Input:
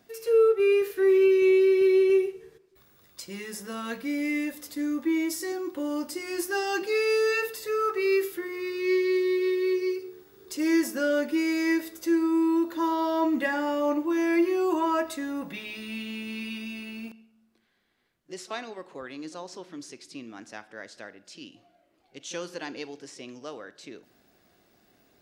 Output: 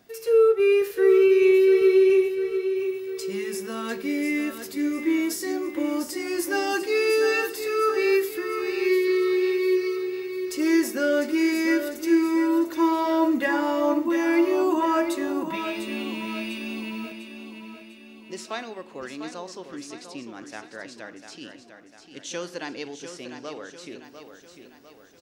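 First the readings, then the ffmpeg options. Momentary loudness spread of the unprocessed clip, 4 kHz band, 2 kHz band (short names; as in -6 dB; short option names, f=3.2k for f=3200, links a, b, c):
22 LU, +3.0 dB, +3.0 dB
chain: -af "aecho=1:1:699|1398|2097|2796|3495|4194:0.355|0.174|0.0852|0.0417|0.0205|0.01,volume=2.5dB"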